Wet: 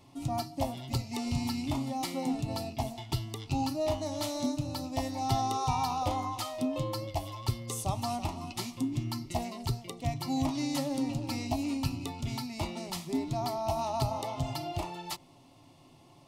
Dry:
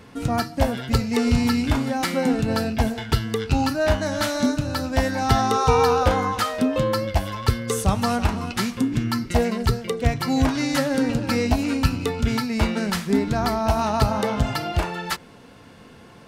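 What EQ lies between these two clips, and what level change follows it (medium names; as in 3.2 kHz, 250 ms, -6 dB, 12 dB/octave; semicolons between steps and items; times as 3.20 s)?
static phaser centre 310 Hz, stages 8; -7.5 dB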